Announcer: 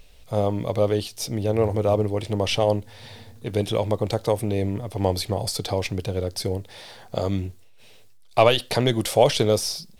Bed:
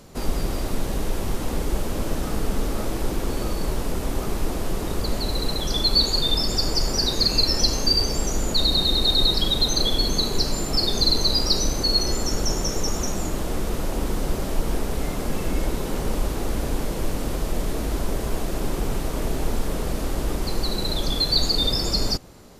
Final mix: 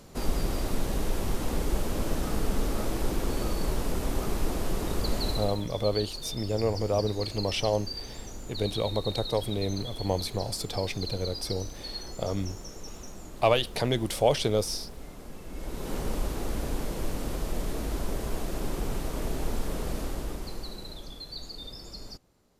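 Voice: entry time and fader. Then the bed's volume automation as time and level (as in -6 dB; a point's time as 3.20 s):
5.05 s, -6.0 dB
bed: 5.30 s -3.5 dB
5.69 s -17.5 dB
15.46 s -17.5 dB
15.92 s -6 dB
19.98 s -6 dB
21.21 s -20 dB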